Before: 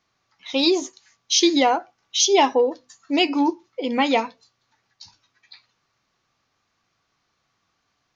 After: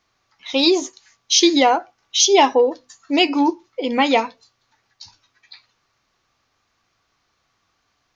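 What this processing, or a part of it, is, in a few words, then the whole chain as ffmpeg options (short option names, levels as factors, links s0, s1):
low shelf boost with a cut just above: -af "lowshelf=f=76:g=5.5,equalizer=f=160:t=o:w=1.1:g=-5,volume=1.5"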